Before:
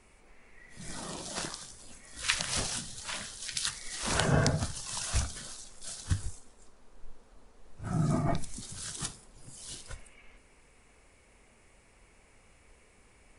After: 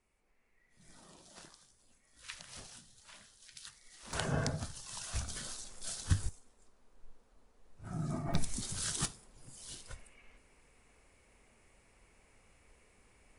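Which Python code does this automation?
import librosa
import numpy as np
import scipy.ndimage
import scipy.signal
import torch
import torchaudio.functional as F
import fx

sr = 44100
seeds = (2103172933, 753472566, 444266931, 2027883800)

y = fx.gain(x, sr, db=fx.steps((0.0, -18.0), (4.13, -8.0), (5.28, 0.0), (6.29, -9.0), (8.34, 3.0), (9.05, -4.5)))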